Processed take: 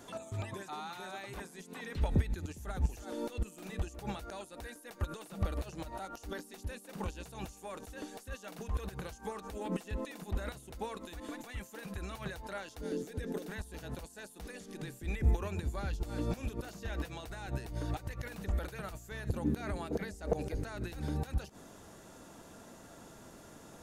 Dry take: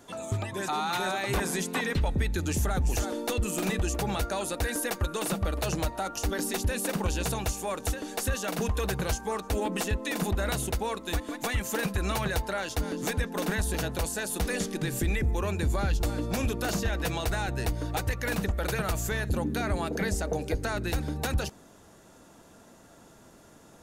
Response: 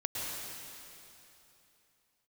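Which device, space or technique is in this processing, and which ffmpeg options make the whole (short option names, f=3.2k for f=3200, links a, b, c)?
de-esser from a sidechain: -filter_complex "[0:a]asplit=2[a][b];[b]highpass=5.5k,apad=whole_len=1050696[c];[a][c]sidechaincompress=threshold=-57dB:ratio=10:attack=4.3:release=67,asettb=1/sr,asplit=3[d][e][f];[d]atrim=end=12.814[g];[e]atrim=start=12.81:end=13.49,asetpts=PTS-STARTPTS,afade=t=in:d=0.004:c=qsin,afade=t=out:st=0.676:d=0.004:c=qsin,equalizer=f=400:t=o:w=0.67:g=8,equalizer=f=1k:t=o:w=0.67:g=-10,equalizer=f=2.5k:t=o:w=0.67:g=-3[h];[f]atrim=start=13.486[i];[g][h]acrossfade=d=0.004:c1=hsin:c2=qsin[j];[j][i]acrossfade=d=0.004:c1=qsin:c2=hsin,volume=1dB"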